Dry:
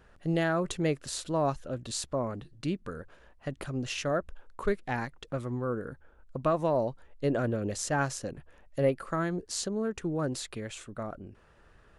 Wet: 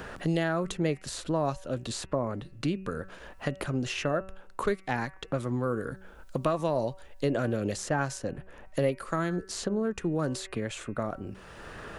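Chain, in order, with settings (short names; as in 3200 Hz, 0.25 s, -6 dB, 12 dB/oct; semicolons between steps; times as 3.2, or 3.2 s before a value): de-hum 190.2 Hz, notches 15; three-band squash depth 70%; gain +1 dB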